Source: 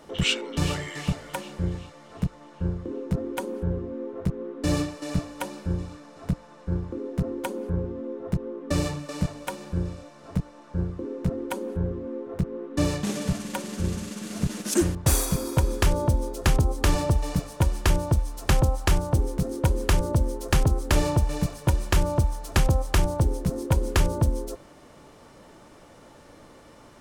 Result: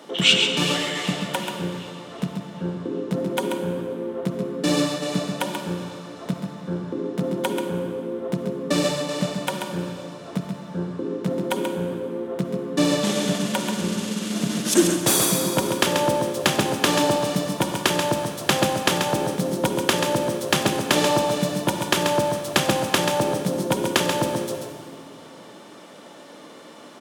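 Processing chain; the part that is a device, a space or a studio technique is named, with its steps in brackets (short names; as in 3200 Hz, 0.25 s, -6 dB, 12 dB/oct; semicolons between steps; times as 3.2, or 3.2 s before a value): PA in a hall (HPF 180 Hz 24 dB/oct; bell 3400 Hz +6.5 dB 0.5 oct; echo 0.135 s -6 dB; reverb RT60 2.1 s, pre-delay 42 ms, DRR 7 dB); gain +5 dB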